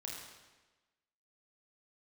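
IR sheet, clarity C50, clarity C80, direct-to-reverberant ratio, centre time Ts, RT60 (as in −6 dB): 0.5 dB, 3.5 dB, −2.5 dB, 69 ms, 1.2 s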